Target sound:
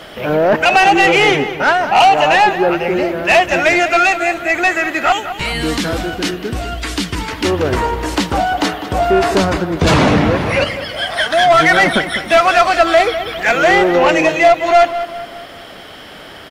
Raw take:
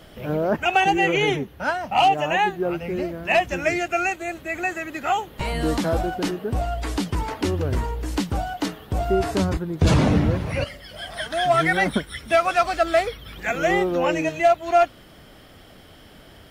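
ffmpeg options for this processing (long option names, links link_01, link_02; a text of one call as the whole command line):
ffmpeg -i in.wav -filter_complex "[0:a]asettb=1/sr,asplit=3[link_01][link_02][link_03];[link_01]atrim=end=5.124[link_04];[link_02]atrim=start=5.12:end=7.45,asetpts=PTS-STARTPTS,afade=type=in:duration=0.004:curve=qsin,afade=type=out:start_time=2.326:duration=0.004:curve=qsin,equalizer=frequency=740:width=0.77:gain=-14[link_05];[link_03]atrim=start=7.446[link_06];[link_04][link_05]acrossfade=duration=0.004:curve1=hsin:curve2=qsin[link_07];[link_07][link_06]acrossfade=duration=0.004:curve1=qsin:curve2=hsin,asplit=2[link_08][link_09];[link_09]highpass=frequency=720:poles=1,volume=17dB,asoftclip=type=tanh:threshold=-8.5dB[link_10];[link_08][link_10]amix=inputs=2:normalize=0,lowpass=frequency=3700:poles=1,volume=-6dB,asplit=2[link_11][link_12];[link_12]adelay=201,lowpass=frequency=3400:poles=1,volume=-11dB,asplit=2[link_13][link_14];[link_14]adelay=201,lowpass=frequency=3400:poles=1,volume=0.47,asplit=2[link_15][link_16];[link_16]adelay=201,lowpass=frequency=3400:poles=1,volume=0.47,asplit=2[link_17][link_18];[link_18]adelay=201,lowpass=frequency=3400:poles=1,volume=0.47,asplit=2[link_19][link_20];[link_20]adelay=201,lowpass=frequency=3400:poles=1,volume=0.47[link_21];[link_11][link_13][link_15][link_17][link_19][link_21]amix=inputs=6:normalize=0,volume=5.5dB" out.wav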